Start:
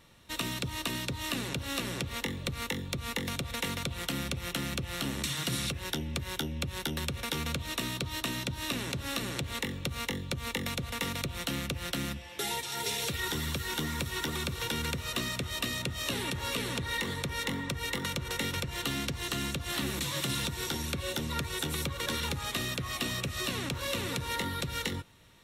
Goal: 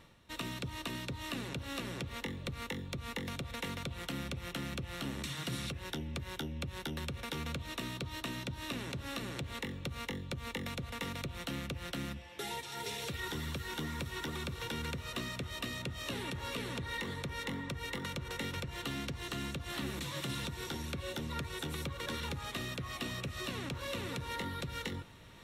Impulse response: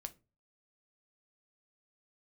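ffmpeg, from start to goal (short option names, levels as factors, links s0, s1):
-af "areverse,acompressor=mode=upward:threshold=0.0112:ratio=2.5,areverse,highshelf=f=4100:g=-7.5,volume=0.596"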